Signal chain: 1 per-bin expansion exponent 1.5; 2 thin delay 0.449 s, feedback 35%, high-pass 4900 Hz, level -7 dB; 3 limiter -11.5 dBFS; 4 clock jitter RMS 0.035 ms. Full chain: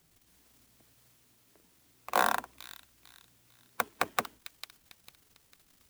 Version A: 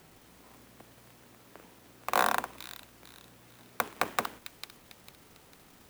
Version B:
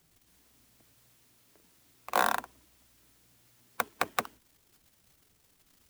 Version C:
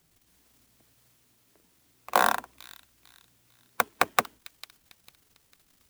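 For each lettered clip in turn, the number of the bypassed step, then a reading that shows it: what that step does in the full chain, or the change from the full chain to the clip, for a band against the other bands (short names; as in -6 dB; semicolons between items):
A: 1, 125 Hz band +2.5 dB; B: 2, momentary loudness spread change -12 LU; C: 3, mean gain reduction 2.0 dB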